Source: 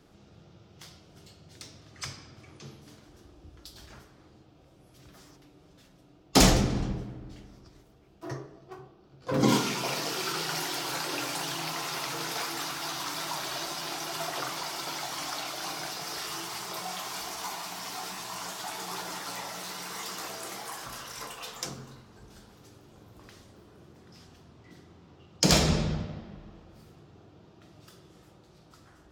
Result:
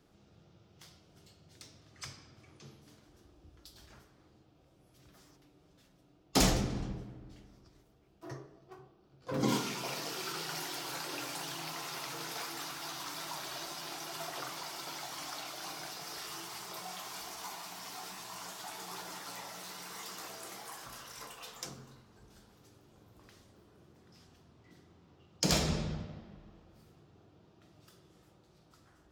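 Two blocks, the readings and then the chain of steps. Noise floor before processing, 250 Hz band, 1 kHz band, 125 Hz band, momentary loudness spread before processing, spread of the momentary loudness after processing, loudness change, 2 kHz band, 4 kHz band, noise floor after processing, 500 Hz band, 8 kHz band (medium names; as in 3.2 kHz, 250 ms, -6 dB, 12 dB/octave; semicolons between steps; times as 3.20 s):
-58 dBFS, -7.5 dB, -7.5 dB, -7.5 dB, 23 LU, 23 LU, -7.5 dB, -7.5 dB, -7.0 dB, -66 dBFS, -7.5 dB, -7.0 dB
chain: treble shelf 12 kHz +3.5 dB; trim -7.5 dB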